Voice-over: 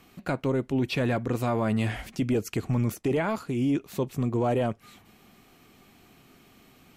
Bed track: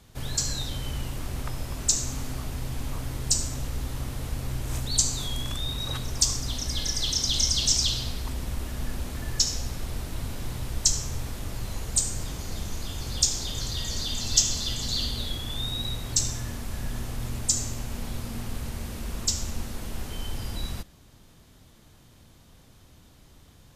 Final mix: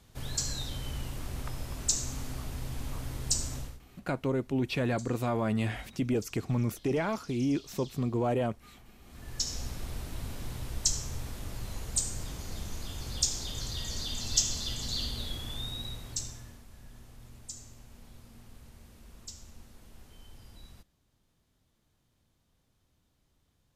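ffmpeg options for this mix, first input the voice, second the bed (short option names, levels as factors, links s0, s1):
-filter_complex "[0:a]adelay=3800,volume=0.668[s0];[1:a]volume=6.68,afade=t=out:st=3.56:d=0.24:silence=0.0794328,afade=t=in:st=9.01:d=0.62:silence=0.0841395,afade=t=out:st=15.45:d=1.21:silence=0.211349[s1];[s0][s1]amix=inputs=2:normalize=0"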